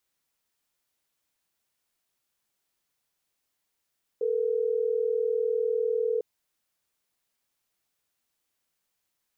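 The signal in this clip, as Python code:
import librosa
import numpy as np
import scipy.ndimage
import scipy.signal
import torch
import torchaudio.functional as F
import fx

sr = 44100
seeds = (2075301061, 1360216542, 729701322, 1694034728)

y = fx.call_progress(sr, length_s=3.12, kind='ringback tone', level_db=-26.5)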